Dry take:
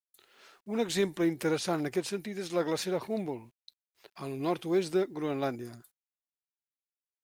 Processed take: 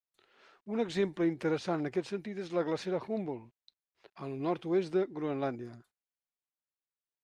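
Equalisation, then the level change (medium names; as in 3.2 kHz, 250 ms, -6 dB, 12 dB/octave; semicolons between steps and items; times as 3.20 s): distance through air 52 m; treble shelf 3.7 kHz -7.5 dB; treble shelf 11 kHz -7.5 dB; -1.5 dB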